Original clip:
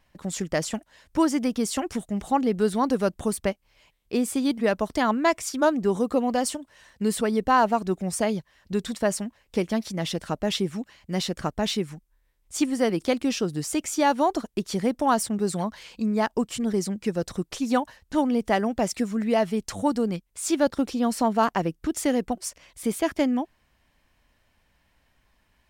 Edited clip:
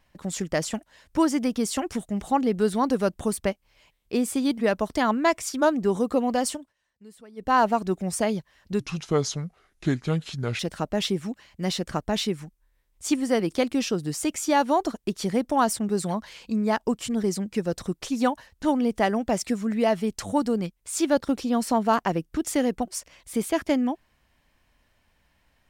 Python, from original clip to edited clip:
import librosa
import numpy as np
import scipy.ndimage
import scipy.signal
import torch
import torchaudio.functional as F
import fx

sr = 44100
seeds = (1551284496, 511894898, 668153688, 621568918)

y = fx.edit(x, sr, fx.fade_down_up(start_s=6.47, length_s=1.15, db=-23.5, fade_s=0.26, curve='qsin'),
    fx.speed_span(start_s=8.8, length_s=1.29, speed=0.72), tone=tone)